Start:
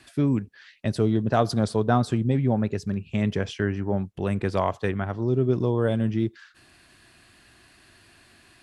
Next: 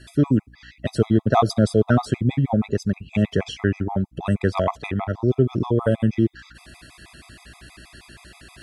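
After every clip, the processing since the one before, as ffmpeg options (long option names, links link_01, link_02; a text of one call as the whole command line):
ffmpeg -i in.wav -af "areverse,acompressor=mode=upward:threshold=-43dB:ratio=2.5,areverse,aeval=exprs='val(0)+0.00224*(sin(2*PI*60*n/s)+sin(2*PI*2*60*n/s)/2+sin(2*PI*3*60*n/s)/3+sin(2*PI*4*60*n/s)/4+sin(2*PI*5*60*n/s)/5)':channel_layout=same,afftfilt=real='re*gt(sin(2*PI*6.3*pts/sr)*(1-2*mod(floor(b*sr/1024/660),2)),0)':imag='im*gt(sin(2*PI*6.3*pts/sr)*(1-2*mod(floor(b*sr/1024/660),2)),0)':win_size=1024:overlap=0.75,volume=6.5dB" out.wav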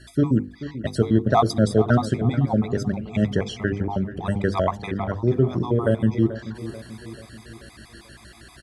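ffmpeg -i in.wav -filter_complex "[0:a]equalizer=frequency=2600:width=6.7:gain=-9.5,bandreject=frequency=50:width_type=h:width=6,bandreject=frequency=100:width_type=h:width=6,bandreject=frequency=150:width_type=h:width=6,bandreject=frequency=200:width_type=h:width=6,bandreject=frequency=250:width_type=h:width=6,bandreject=frequency=300:width_type=h:width=6,bandreject=frequency=350:width_type=h:width=6,bandreject=frequency=400:width_type=h:width=6,bandreject=frequency=450:width_type=h:width=6,bandreject=frequency=500:width_type=h:width=6,asplit=2[link_01][link_02];[link_02]adelay=436,lowpass=frequency=2500:poles=1,volume=-13.5dB,asplit=2[link_03][link_04];[link_04]adelay=436,lowpass=frequency=2500:poles=1,volume=0.53,asplit=2[link_05][link_06];[link_06]adelay=436,lowpass=frequency=2500:poles=1,volume=0.53,asplit=2[link_07][link_08];[link_08]adelay=436,lowpass=frequency=2500:poles=1,volume=0.53,asplit=2[link_09][link_10];[link_10]adelay=436,lowpass=frequency=2500:poles=1,volume=0.53[link_11];[link_01][link_03][link_05][link_07][link_09][link_11]amix=inputs=6:normalize=0" out.wav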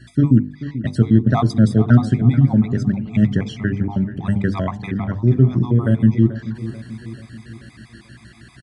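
ffmpeg -i in.wav -af "equalizer=frequency=125:width_type=o:width=1:gain=11,equalizer=frequency=250:width_type=o:width=1:gain=9,equalizer=frequency=500:width_type=o:width=1:gain=-5,equalizer=frequency=2000:width_type=o:width=1:gain=6,aresample=22050,aresample=44100,bandreject=frequency=147.6:width_type=h:width=4,bandreject=frequency=295.2:width_type=h:width=4,bandreject=frequency=442.8:width_type=h:width=4,bandreject=frequency=590.4:width_type=h:width=4,bandreject=frequency=738:width_type=h:width=4,bandreject=frequency=885.6:width_type=h:width=4,bandreject=frequency=1033.2:width_type=h:width=4,volume=-3.5dB" out.wav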